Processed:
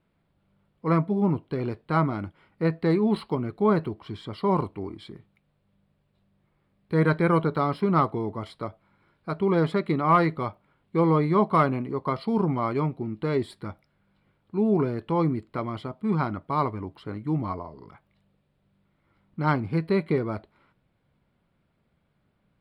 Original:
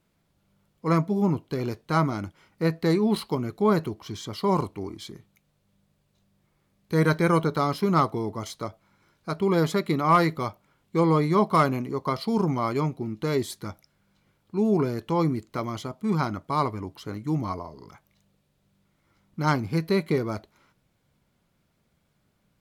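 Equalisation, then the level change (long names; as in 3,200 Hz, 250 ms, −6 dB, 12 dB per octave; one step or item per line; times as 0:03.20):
moving average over 7 samples
0.0 dB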